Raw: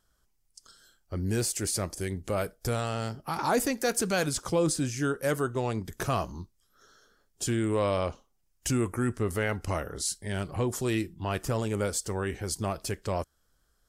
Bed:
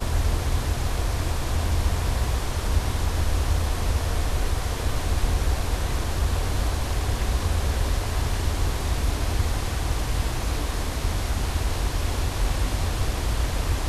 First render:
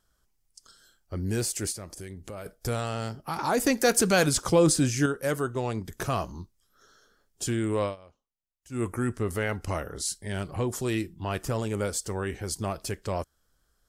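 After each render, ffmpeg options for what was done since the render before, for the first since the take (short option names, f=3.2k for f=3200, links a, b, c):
-filter_complex "[0:a]asettb=1/sr,asplit=3[a][b][c];[a]atrim=end=1.724[d];[b]atrim=start=1.72:end=2.46,asetpts=PTS-STARTPTS,afade=t=in:d=0.004:c=qsin,afade=t=out:st=0.736:d=0.004:c=qsin,acompressor=threshold=-39dB:ratio=3:attack=3.2:release=140:knee=1:detection=peak[e];[c]atrim=start=2.456[f];[d][e]acrossfade=d=0.004:c1=hsin:c2=qsin[g];[g][f]acrossfade=d=0.004:c1=qsin:c2=hsin,asettb=1/sr,asplit=3[h][i][j];[h]atrim=end=3.664[k];[i]atrim=start=3.66:end=5.06,asetpts=PTS-STARTPTS,afade=t=in:d=0.004:c=qsin,afade=t=out:st=1.396:d=0.004:c=qsin,acontrast=40[l];[j]atrim=start=5.056[m];[k][l]acrossfade=d=0.004:c1=hsin:c2=qsin[n];[n][m]acrossfade=d=0.004:c1=qsin:c2=hsin,asplit=3[o][p][q];[o]atrim=end=7.96,asetpts=PTS-STARTPTS,afade=t=out:st=7.83:d=0.13:silence=0.0749894[r];[p]atrim=start=7.96:end=8.7,asetpts=PTS-STARTPTS,volume=-22.5dB[s];[q]atrim=start=8.7,asetpts=PTS-STARTPTS,afade=t=in:d=0.13:silence=0.0749894[t];[r][s][t]concat=n=3:v=0:a=1"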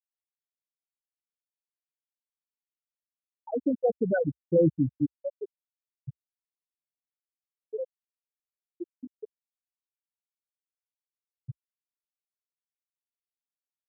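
-af "afftfilt=real='re*gte(hypot(re,im),0.501)':imag='im*gte(hypot(re,im),0.501)':win_size=1024:overlap=0.75,equalizer=f=64:w=4.6:g=-2"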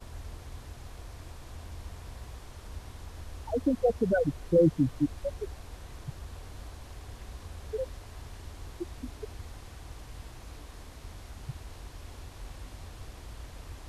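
-filter_complex "[1:a]volume=-19.5dB[a];[0:a][a]amix=inputs=2:normalize=0"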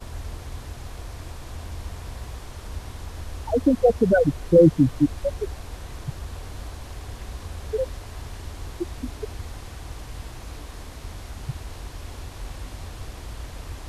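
-af "volume=8dB"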